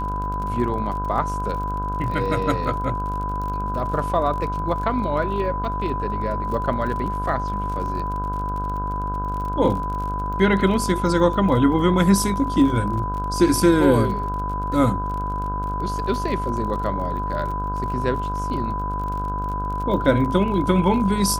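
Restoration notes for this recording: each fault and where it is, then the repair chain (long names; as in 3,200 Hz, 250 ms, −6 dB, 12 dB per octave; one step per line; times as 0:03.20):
mains buzz 50 Hz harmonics 32 −28 dBFS
surface crackle 39 per second −30 dBFS
whistle 1,000 Hz −26 dBFS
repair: click removal
hum removal 50 Hz, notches 32
notch filter 1,000 Hz, Q 30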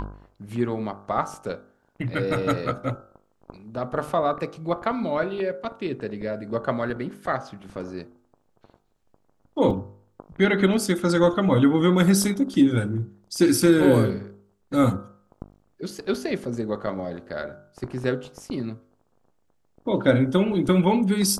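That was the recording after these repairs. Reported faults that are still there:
none of them is left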